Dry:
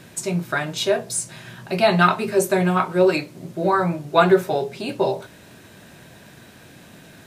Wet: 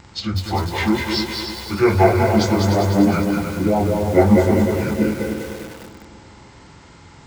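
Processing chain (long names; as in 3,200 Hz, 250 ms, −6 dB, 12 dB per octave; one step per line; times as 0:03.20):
phase-vocoder pitch shift without resampling −10.5 semitones
echo machine with several playback heads 100 ms, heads second and third, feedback 52%, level −8 dB
feedback echo at a low word length 198 ms, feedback 55%, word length 6 bits, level −4 dB
level +2 dB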